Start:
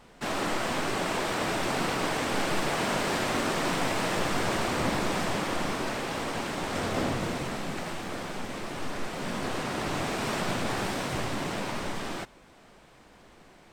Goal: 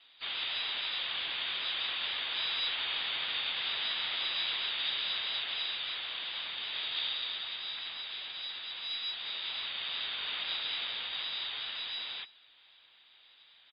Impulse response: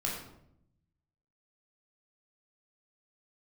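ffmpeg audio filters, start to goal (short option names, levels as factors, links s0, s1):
-filter_complex "[0:a]lowpass=f=3300:t=q:w=0.5098,lowpass=f=3300:t=q:w=0.6013,lowpass=f=3300:t=q:w=0.9,lowpass=f=3300:t=q:w=2.563,afreqshift=-3900,asplit=3[s0][s1][s2];[s1]asetrate=37084,aresample=44100,atempo=1.18921,volume=0.158[s3];[s2]asetrate=55563,aresample=44100,atempo=0.793701,volume=0.224[s4];[s0][s3][s4]amix=inputs=3:normalize=0,volume=0.473"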